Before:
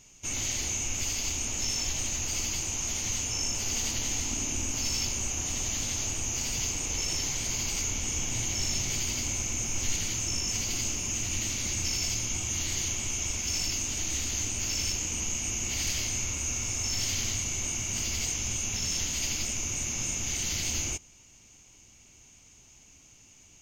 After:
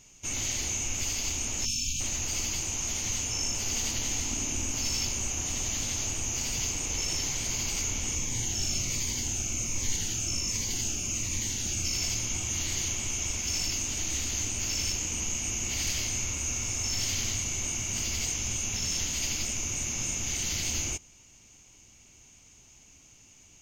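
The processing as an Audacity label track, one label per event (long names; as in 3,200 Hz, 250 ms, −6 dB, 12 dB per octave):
1.650000	2.000000	time-frequency box erased 280–2,300 Hz
8.150000	11.950000	phaser whose notches keep moving one way falling 1.3 Hz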